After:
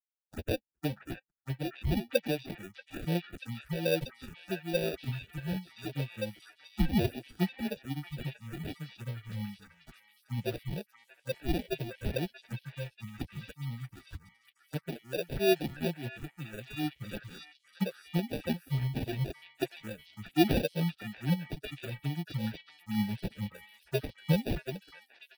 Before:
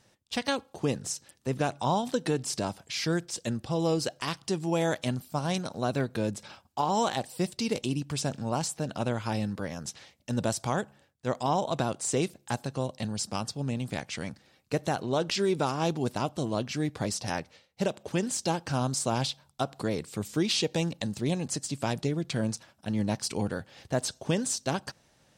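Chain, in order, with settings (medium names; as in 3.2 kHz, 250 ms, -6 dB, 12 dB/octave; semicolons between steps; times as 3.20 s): expander on every frequency bin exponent 3; comb 5.9 ms, depth 79%; in parallel at +2 dB: compression, threshold -42 dBFS, peak gain reduction 19 dB; on the sum: sample-and-hold 42×; touch-sensitive phaser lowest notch 310 Hz, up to 1.3 kHz, full sweep at -31.5 dBFS; on a send: repeats whose band climbs or falls 636 ms, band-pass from 1.6 kHz, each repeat 0.7 oct, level -2 dB; on the sum: three bands expanded up and down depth 40%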